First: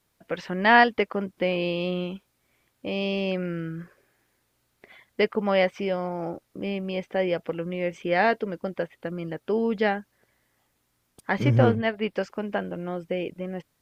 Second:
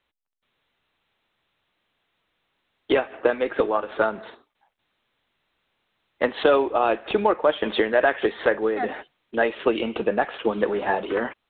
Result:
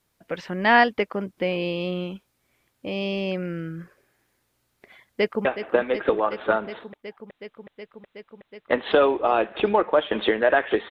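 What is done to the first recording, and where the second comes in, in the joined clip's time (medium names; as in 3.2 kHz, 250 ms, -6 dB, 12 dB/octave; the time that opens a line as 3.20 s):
first
5.07–5.45 s: echo throw 370 ms, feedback 85%, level -10 dB
5.45 s: go over to second from 2.96 s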